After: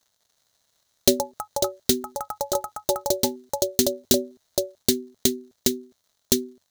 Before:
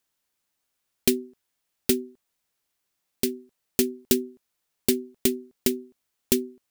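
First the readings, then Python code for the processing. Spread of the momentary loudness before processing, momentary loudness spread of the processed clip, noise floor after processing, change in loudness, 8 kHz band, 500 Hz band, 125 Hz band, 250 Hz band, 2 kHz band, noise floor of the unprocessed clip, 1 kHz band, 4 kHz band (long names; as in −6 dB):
7 LU, 7 LU, −73 dBFS, +2.0 dB, +6.0 dB, +4.5 dB, +4.0 dB, +0.5 dB, −1.5 dB, −79 dBFS, +21.0 dB, +6.5 dB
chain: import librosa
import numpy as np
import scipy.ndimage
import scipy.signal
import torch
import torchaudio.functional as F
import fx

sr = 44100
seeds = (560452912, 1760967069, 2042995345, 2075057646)

y = fx.dmg_crackle(x, sr, seeds[0], per_s=170.0, level_db=-56.0)
y = fx.echo_pitch(y, sr, ms=360, semitones=7, count=3, db_per_echo=-3.0)
y = fx.graphic_eq_31(y, sr, hz=(100, 315, 630, 2500, 4000, 6300), db=(8, -6, 6, -8, 9, 8))
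y = y * librosa.db_to_amplitude(1.0)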